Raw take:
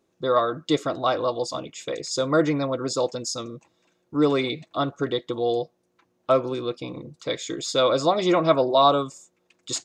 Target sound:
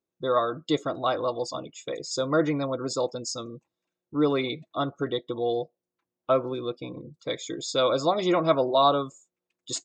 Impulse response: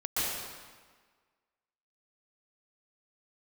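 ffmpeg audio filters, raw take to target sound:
-af "afftdn=noise_reduction=16:noise_floor=-41,volume=-3dB"

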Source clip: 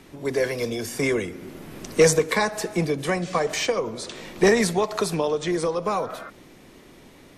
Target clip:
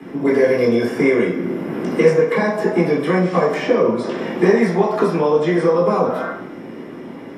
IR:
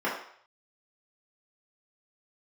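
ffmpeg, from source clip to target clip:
-filter_complex "[0:a]lowshelf=frequency=410:gain=10,acrossover=split=96|310|690|3200[link_01][link_02][link_03][link_04][link_05];[link_01]acompressor=threshold=-49dB:ratio=4[link_06];[link_02]acompressor=threshold=-30dB:ratio=4[link_07];[link_03]acompressor=threshold=-32dB:ratio=4[link_08];[link_04]acompressor=threshold=-34dB:ratio=4[link_09];[link_05]acompressor=threshold=-40dB:ratio=4[link_10];[link_06][link_07][link_08][link_09][link_10]amix=inputs=5:normalize=0,acrossover=split=100|6100[link_11][link_12][link_13];[link_11]acrusher=samples=34:mix=1:aa=0.000001[link_14];[link_14][link_12][link_13]amix=inputs=3:normalize=0[link_15];[1:a]atrim=start_sample=2205[link_16];[link_15][link_16]afir=irnorm=-1:irlink=0,volume=-1dB"

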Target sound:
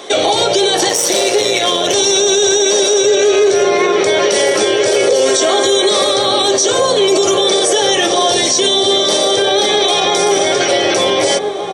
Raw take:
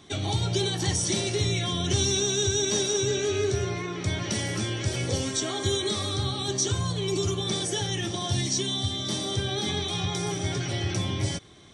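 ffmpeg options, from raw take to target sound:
ffmpeg -i in.wav -filter_complex "[0:a]asettb=1/sr,asplit=3[link_01][link_02][link_03];[link_01]atrim=end=0.894[link_04];[link_02]atrim=start=0.89:end=1.94,asetpts=PTS-STARTPTS,afade=type=in:duration=0.004:curve=qsin,afade=type=out:start_time=1.046:duration=0.004:curve=qsin,aeval=exprs='(tanh(10*val(0)+0.7)-tanh(0.7))/10':channel_layout=same[link_05];[link_03]atrim=start=1.936[link_06];[link_04][link_05]acrossfade=duration=0.004:curve1=hsin:curve2=qsin[link_07];[link_07][link_06]acrossfade=duration=0.004:curve1=qsin:curve2=hsin,highpass=frequency=510:width_type=q:width=3.7,asplit=2[link_08][link_09];[link_09]adelay=1691,volume=-7dB,highshelf=frequency=4000:gain=-38[link_10];[link_08][link_10]amix=inputs=2:normalize=0,alimiter=level_in=23.5dB:limit=-1dB:release=50:level=0:latency=1,volume=-3dB" out.wav

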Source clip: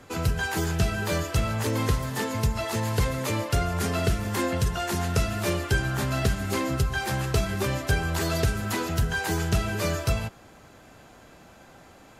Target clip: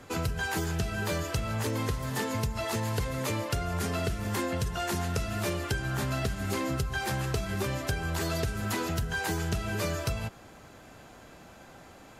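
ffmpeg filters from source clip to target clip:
ffmpeg -i in.wav -af "acompressor=threshold=-27dB:ratio=6" out.wav

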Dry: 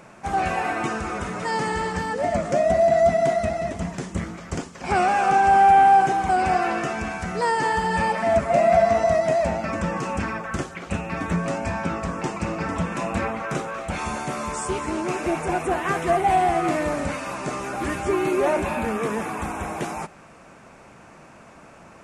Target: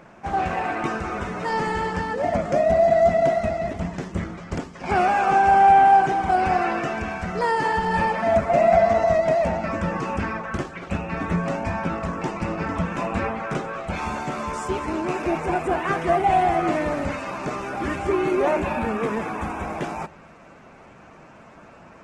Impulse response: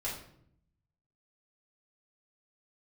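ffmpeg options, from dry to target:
-filter_complex "[0:a]adynamicsmooth=sensitivity=1:basefreq=5800,asplit=2[link_01][link_02];[1:a]atrim=start_sample=2205,lowpass=5200[link_03];[link_02][link_03]afir=irnorm=-1:irlink=0,volume=-21.5dB[link_04];[link_01][link_04]amix=inputs=2:normalize=0" -ar 48000 -c:a libopus -b:a 16k

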